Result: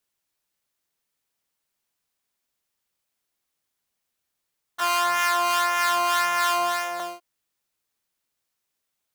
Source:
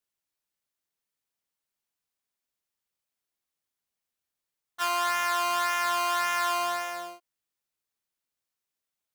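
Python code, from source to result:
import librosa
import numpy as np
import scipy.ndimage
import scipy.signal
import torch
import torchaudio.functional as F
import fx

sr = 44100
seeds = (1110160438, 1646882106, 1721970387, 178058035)

y = fx.harmonic_tremolo(x, sr, hz=3.3, depth_pct=50, crossover_hz=1100.0, at=(4.8, 7.0))
y = y * librosa.db_to_amplitude(7.0)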